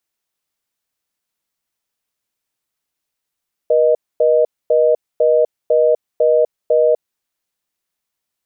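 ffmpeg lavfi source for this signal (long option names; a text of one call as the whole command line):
ffmpeg -f lavfi -i "aevalsrc='0.237*(sin(2*PI*480*t)+sin(2*PI*620*t))*clip(min(mod(t,0.5),0.25-mod(t,0.5))/0.005,0,1)':duration=3.35:sample_rate=44100" out.wav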